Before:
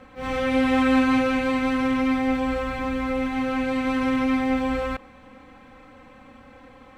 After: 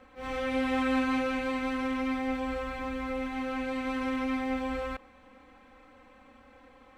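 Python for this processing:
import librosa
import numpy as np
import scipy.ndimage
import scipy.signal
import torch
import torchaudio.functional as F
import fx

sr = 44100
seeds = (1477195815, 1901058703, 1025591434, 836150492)

y = fx.peak_eq(x, sr, hz=140.0, db=-12.5, octaves=0.76)
y = y * librosa.db_to_amplitude(-7.0)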